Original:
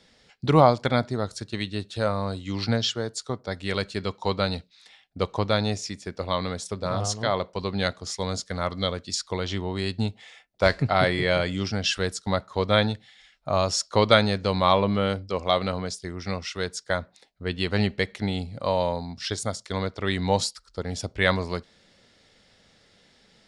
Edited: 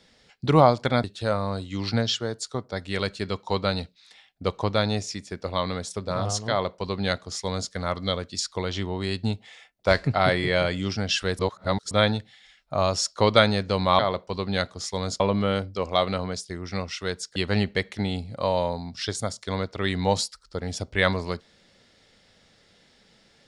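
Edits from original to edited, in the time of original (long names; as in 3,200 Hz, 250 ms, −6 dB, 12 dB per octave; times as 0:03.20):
0:01.04–0:01.79: remove
0:07.25–0:08.46: duplicate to 0:14.74
0:12.14–0:12.66: reverse
0:16.90–0:17.59: remove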